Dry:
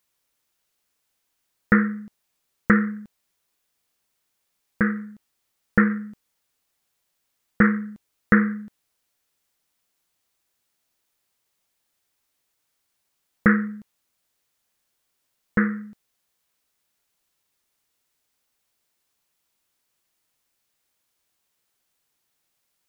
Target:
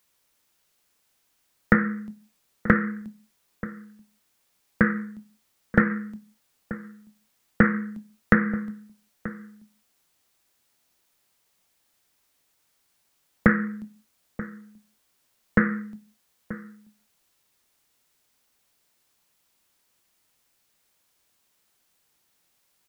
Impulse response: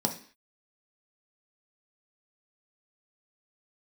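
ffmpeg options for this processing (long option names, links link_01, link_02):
-filter_complex "[0:a]acrossover=split=120[link_01][link_02];[link_02]acompressor=threshold=-21dB:ratio=4[link_03];[link_01][link_03]amix=inputs=2:normalize=0,asplit=2[link_04][link_05];[link_05]adelay=932.9,volume=-15dB,highshelf=frequency=4000:gain=-21[link_06];[link_04][link_06]amix=inputs=2:normalize=0,asplit=2[link_07][link_08];[1:a]atrim=start_sample=2205,adelay=23[link_09];[link_08][link_09]afir=irnorm=-1:irlink=0,volume=-22dB[link_10];[link_07][link_10]amix=inputs=2:normalize=0,volume=5dB"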